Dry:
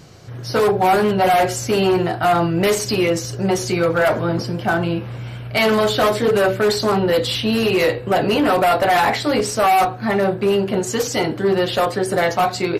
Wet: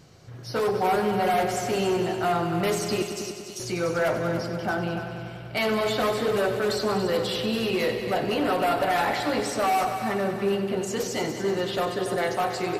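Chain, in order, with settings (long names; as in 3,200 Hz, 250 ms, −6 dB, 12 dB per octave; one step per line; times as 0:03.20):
0:03.02–0:03.60: inverse Chebyshev high-pass filter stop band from 1,600 Hz
echo machine with several playback heads 96 ms, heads all three, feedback 55%, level −12.5 dB
level −9 dB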